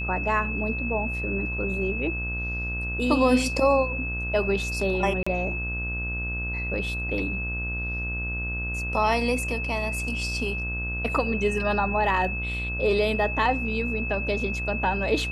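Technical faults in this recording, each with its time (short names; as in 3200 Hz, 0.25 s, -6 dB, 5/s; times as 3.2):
buzz 60 Hz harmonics 28 -32 dBFS
tone 2600 Hz -30 dBFS
5.23–5.26 gap 35 ms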